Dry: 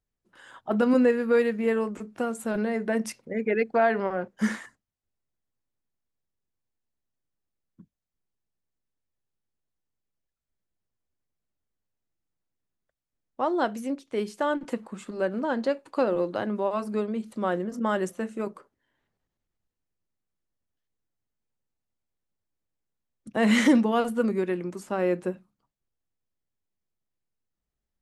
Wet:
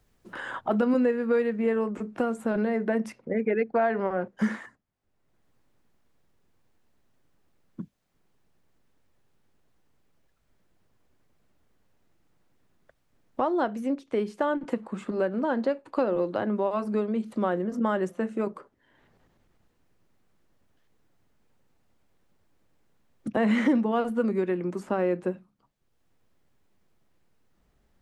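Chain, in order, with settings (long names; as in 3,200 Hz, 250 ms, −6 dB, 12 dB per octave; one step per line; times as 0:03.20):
high-shelf EQ 3,500 Hz −5 dB, from 0:00.80 −12 dB
multiband upward and downward compressor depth 70%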